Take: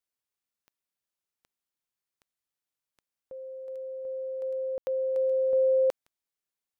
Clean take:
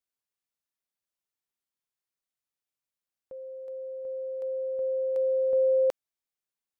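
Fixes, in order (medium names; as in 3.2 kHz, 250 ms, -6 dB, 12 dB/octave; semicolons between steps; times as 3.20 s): de-click; room tone fill 4.78–4.87 s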